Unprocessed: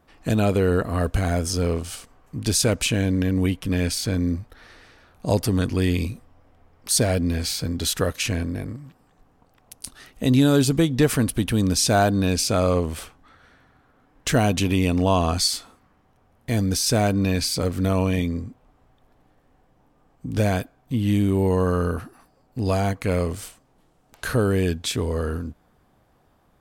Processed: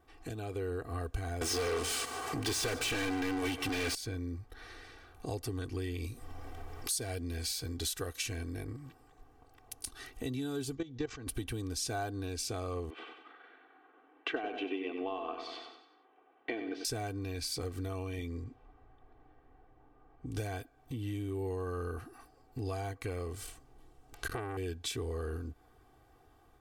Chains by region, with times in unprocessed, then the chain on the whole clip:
1.41–3.95 HPF 50 Hz 24 dB/oct + overdrive pedal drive 37 dB, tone 5100 Hz, clips at -7.5 dBFS + feedback echo 0.147 s, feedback 43%, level -16 dB
6.04–8.64 bell 12000 Hz +6 dB 2.5 oct + upward compressor, threshold -30 dBFS
10.75–11.27 steep low-pass 7100 Hz 72 dB/oct + level quantiser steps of 16 dB
12.9–16.85 Chebyshev band-pass 300–3000 Hz, order 3 + transient shaper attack +6 dB, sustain -2 dB + feedback echo 94 ms, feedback 44%, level -9 dB
18.44–20.47 low-pass opened by the level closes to 2000 Hz, open at -25.5 dBFS + high shelf 5300 Hz +6 dB
23.41–24.57 low shelf 180 Hz +7 dB + core saturation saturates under 1100 Hz
whole clip: compressor 4:1, threshold -34 dBFS; comb 2.6 ms, depth 77%; AGC gain up to 3.5 dB; gain -7.5 dB

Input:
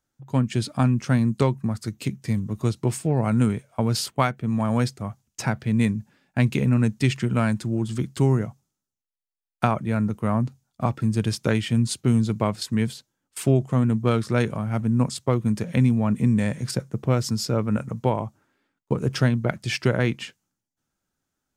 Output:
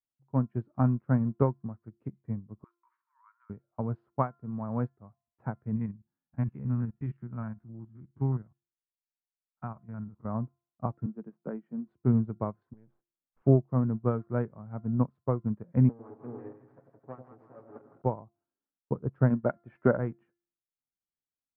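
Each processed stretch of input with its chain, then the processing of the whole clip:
2.64–3.5 brick-wall FIR high-pass 910 Hz + notch 2600 Hz, Q 8.9
5.76–10.25 stepped spectrum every 50 ms + bell 480 Hz -9.5 dB 1.3 oct
11.06–11.88 Chebyshev high-pass 150 Hz, order 6 + tape spacing loss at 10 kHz 24 dB
12.73–13.42 half-wave gain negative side -12 dB + compressor 2.5:1, threshold -32 dBFS
15.89–18.02 minimum comb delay 7.3 ms + HPF 240 Hz + split-band echo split 760 Hz, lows 96 ms, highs 0.163 s, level -4 dB
19.3–19.97 small resonant body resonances 240/570/1400 Hz, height 6 dB, ringing for 35 ms + overdrive pedal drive 12 dB, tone 2500 Hz, clips at -4 dBFS
whole clip: LPF 1300 Hz 24 dB/oct; de-hum 345.4 Hz, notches 28; upward expander 2.5:1, over -31 dBFS; gain -1 dB

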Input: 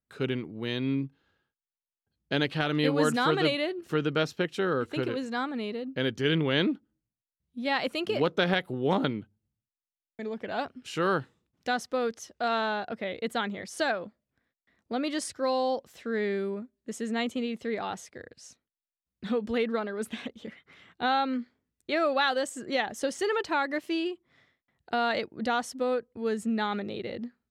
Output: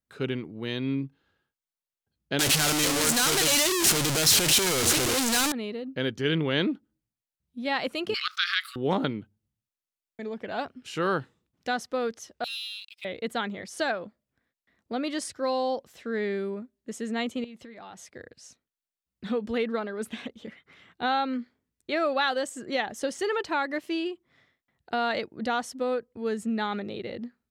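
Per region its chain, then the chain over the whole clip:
2.39–5.52 infinite clipping + bell 8100 Hz +12.5 dB 2.7 oct
8.14–8.76 brick-wall FIR high-pass 1100 Hz + bell 4700 Hz +11 dB 0.58 oct + fast leveller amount 50%
12.44–13.05 steep high-pass 2400 Hz 72 dB/oct + sample leveller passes 2
17.44–18.11 compressor 5:1, threshold -41 dBFS + notch 430 Hz, Q 5.4
whole clip: dry

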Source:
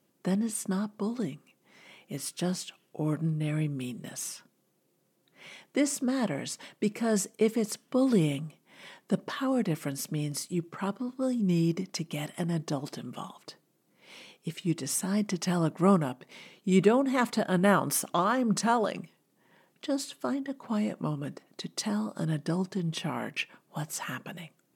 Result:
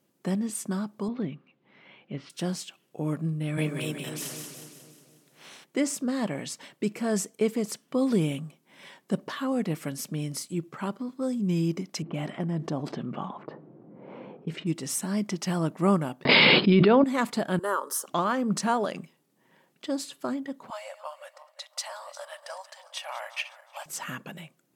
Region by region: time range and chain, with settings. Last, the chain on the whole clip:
1.08–2.3 LPF 3500 Hz 24 dB/oct + low shelf 86 Hz +9 dB
3.57–5.63 spectral limiter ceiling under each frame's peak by 17 dB + HPF 140 Hz 24 dB/oct + split-band echo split 720 Hz, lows 0.252 s, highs 0.181 s, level -5 dB
12.02–14.67 LPF 1500 Hz 6 dB/oct + low-pass opened by the level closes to 670 Hz, open at -30.5 dBFS + fast leveller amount 50%
16.25–17.04 brick-wall FIR low-pass 5200 Hz + notches 60/120/180/240/300/360 Hz + fast leveller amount 100%
17.59–18.08 Chebyshev high-pass 330 Hz, order 4 + fixed phaser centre 470 Hz, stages 8
20.7–23.86 regenerating reverse delay 0.182 s, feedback 58%, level -14 dB + brick-wall FIR high-pass 520 Hz + mismatched tape noise reduction decoder only
whole clip: dry

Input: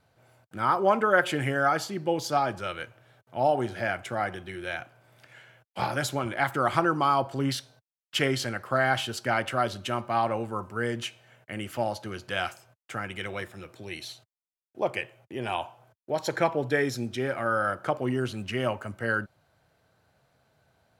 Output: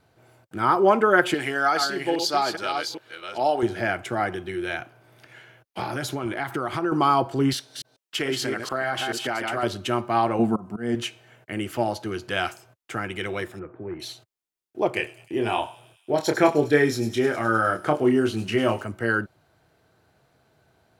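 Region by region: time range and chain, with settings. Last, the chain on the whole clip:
1.34–3.63 reverse delay 0.409 s, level -6 dB + HPF 600 Hz 6 dB/oct + bell 4300 Hz +10 dB 0.52 oct
4.78–6.92 notch 7600 Hz, Q 9.3 + compressor 3:1, threshold -30 dBFS
7.53–9.63 reverse delay 0.145 s, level -5.5 dB + HPF 270 Hz 6 dB/oct + compressor 4:1, threshold -27 dBFS
10.39–10.95 auto swell 0.29 s + small resonant body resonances 200/690 Hz, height 15 dB
13.59–14 self-modulated delay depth 0.17 ms + de-esser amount 85% + inverse Chebyshev low-pass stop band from 5400 Hz, stop band 60 dB
14.93–18.84 doubler 27 ms -5 dB + thin delay 0.102 s, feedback 69%, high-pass 5400 Hz, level -8 dB
whole clip: bell 350 Hz +7 dB 0.64 oct; notch 550 Hz, Q 12; gain +3.5 dB

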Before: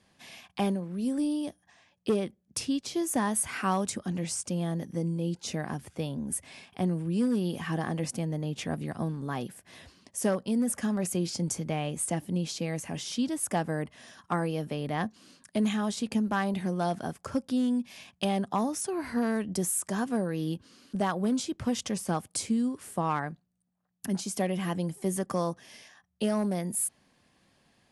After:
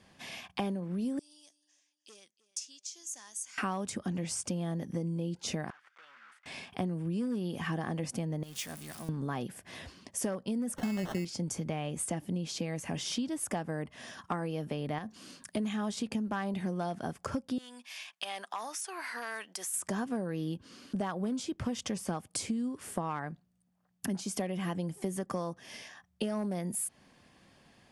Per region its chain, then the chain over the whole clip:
1.19–3.58 band-pass 6600 Hz, Q 4.2 + feedback echo 0.31 s, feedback 28%, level -19 dB
5.7–6.46 block floating point 3-bit + compressor 4:1, threshold -35 dBFS + ladder band-pass 1600 Hz, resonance 55%
8.43–9.09 zero-crossing step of -37 dBFS + pre-emphasis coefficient 0.9 + notches 60/120/180 Hz
10.76–11.25 low shelf 360 Hz +5 dB + sample-rate reducer 2400 Hz
14.98–15.57 high shelf 6400 Hz +6 dB + compressor 12:1, threshold -33 dBFS
17.58–19.74 HPF 1200 Hz + compressor 2:1, threshold -40 dBFS
whole clip: high shelf 7900 Hz -6 dB; notch 4000 Hz, Q 21; compressor 5:1, threshold -37 dBFS; gain +5 dB

